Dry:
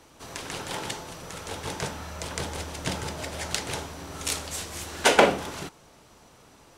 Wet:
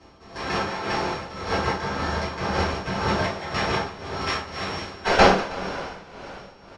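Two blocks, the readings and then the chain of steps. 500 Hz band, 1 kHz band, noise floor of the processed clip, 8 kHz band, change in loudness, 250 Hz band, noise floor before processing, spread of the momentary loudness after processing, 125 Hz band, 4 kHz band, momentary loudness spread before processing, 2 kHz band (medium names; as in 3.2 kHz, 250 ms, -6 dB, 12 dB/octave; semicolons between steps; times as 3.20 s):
+3.5 dB, +6.5 dB, -48 dBFS, -9.0 dB, +4.0 dB, +6.0 dB, -55 dBFS, 17 LU, +6.5 dB, +1.5 dB, 17 LU, +4.5 dB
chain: sorted samples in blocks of 8 samples; dynamic bell 1.3 kHz, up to +7 dB, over -44 dBFS, Q 0.8; level rider gain up to 3.5 dB; one-sided clip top -22 dBFS; resampled via 22.05 kHz; distance through air 120 m; on a send: delay 319 ms -11 dB; on the sum: two-slope reverb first 0.34 s, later 4.3 s, from -21 dB, DRR -10 dB; tremolo 1.9 Hz, depth 69%; trim -2 dB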